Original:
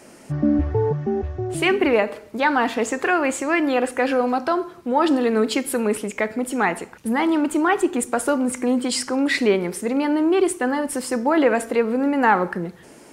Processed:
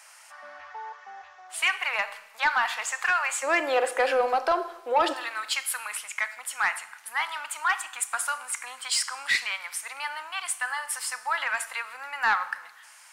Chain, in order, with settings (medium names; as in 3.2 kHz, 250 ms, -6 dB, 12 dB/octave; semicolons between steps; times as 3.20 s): inverse Chebyshev high-pass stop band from 360 Hz, stop band 50 dB, from 3.42 s stop band from 180 Hz, from 5.12 s stop band from 400 Hz; saturation -14 dBFS, distortion -18 dB; Schroeder reverb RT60 1.1 s, combs from 26 ms, DRR 15.5 dB